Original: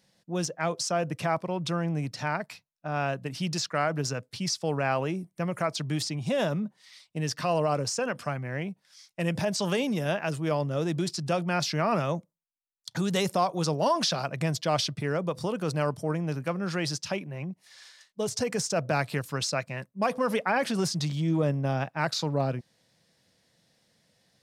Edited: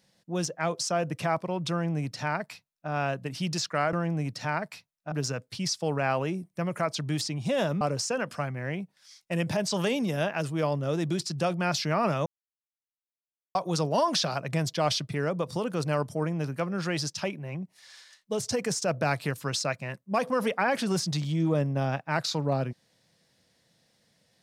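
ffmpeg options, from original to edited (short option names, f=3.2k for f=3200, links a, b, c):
-filter_complex "[0:a]asplit=6[a][b][c][d][e][f];[a]atrim=end=3.932[g];[b]atrim=start=1.708:end=2.902[h];[c]atrim=start=3.928:end=6.622[i];[d]atrim=start=7.688:end=12.14,asetpts=PTS-STARTPTS,afade=t=out:st=4.448:d=0.004:c=hsin[j];[e]atrim=start=12.14:end=13.43,asetpts=PTS-STARTPTS,volume=0[k];[f]atrim=start=13.43,asetpts=PTS-STARTPTS,afade=t=in:d=0.004:c=hsin[l];[g][h]acrossfade=d=0.004:c1=hsin:c2=hsin[m];[m][i]acrossfade=d=0.004:c1=hsin:c2=hsin[n];[j][k][l]concat=n=3:v=0:a=1[o];[n][o]acrossfade=d=0.004:c1=hsin:c2=hsin"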